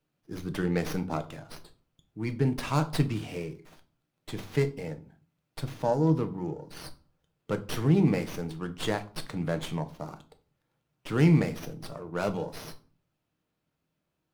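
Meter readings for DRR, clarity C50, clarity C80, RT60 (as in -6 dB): 8.0 dB, 17.0 dB, 22.5 dB, 0.40 s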